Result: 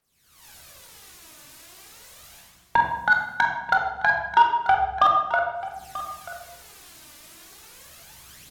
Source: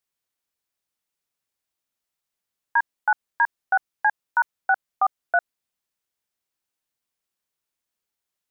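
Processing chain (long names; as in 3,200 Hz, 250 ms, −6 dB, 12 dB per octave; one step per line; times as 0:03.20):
camcorder AGC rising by 65 dB per second
treble cut that deepens with the level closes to 1,300 Hz, closed at −15.5 dBFS
reversed playback
downward compressor 6 to 1, threshold −22 dBFS, peak gain reduction 19.5 dB
reversed playback
phase shifter 0.35 Hz, delay 3.5 ms, feedback 67%
soft clipping −15 dBFS, distortion −15 dB
single-tap delay 937 ms −15 dB
on a send at −2 dB: convolution reverb RT60 0.95 s, pre-delay 19 ms
on the sum: level +5 dB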